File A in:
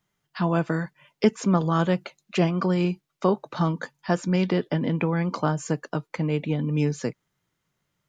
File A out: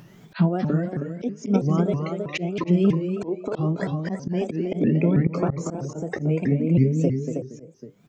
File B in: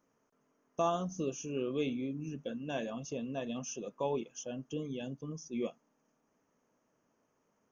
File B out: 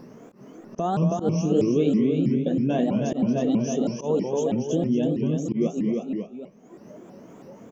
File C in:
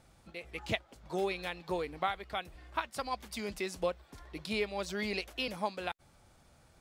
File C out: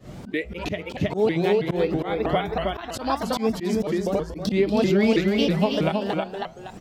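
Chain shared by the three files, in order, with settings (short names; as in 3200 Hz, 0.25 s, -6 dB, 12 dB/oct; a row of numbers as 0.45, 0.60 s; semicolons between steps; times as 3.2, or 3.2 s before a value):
small resonant body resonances 410/640/2100/3000 Hz, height 7 dB, ringing for 25 ms; compressor 6:1, threshold -27 dBFS; bell 190 Hz +14.5 dB 1.8 oct; echo 0.32 s -5.5 dB; flange 0.62 Hz, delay 7.4 ms, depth 4 ms, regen +88%; bell 9700 Hz -9.5 dB 0.25 oct; spectral noise reduction 15 dB; on a send: feedback echo 0.233 s, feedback 16%, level -8.5 dB; on the sum: upward compressor, threshold -27 dBFS; auto swell 0.101 s; shaped vibrato saw up 3.1 Hz, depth 250 cents; match loudness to -24 LUFS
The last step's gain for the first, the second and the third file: +5.0, +7.5, +10.0 dB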